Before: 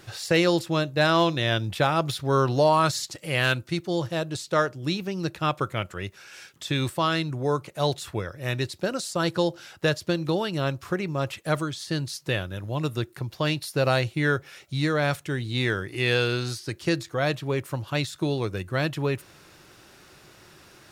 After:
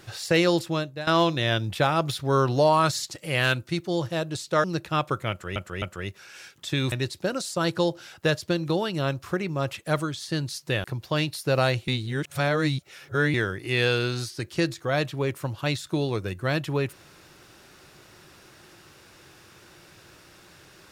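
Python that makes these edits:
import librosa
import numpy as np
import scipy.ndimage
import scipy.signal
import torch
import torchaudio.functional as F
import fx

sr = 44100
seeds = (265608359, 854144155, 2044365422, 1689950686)

y = fx.edit(x, sr, fx.fade_out_to(start_s=0.65, length_s=0.42, floor_db=-18.5),
    fx.cut(start_s=4.64, length_s=0.5),
    fx.repeat(start_s=5.8, length_s=0.26, count=3),
    fx.cut(start_s=6.9, length_s=1.61),
    fx.cut(start_s=12.43, length_s=0.7),
    fx.reverse_span(start_s=14.17, length_s=1.46), tone=tone)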